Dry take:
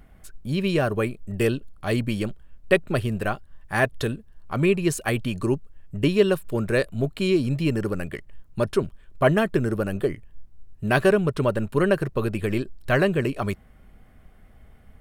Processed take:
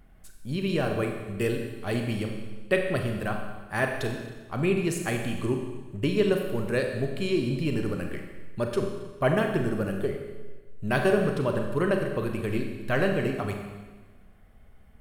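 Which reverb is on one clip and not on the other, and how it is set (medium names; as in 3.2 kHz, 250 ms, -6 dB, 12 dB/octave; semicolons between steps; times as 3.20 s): Schroeder reverb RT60 1.3 s, combs from 30 ms, DRR 3 dB; trim -5.5 dB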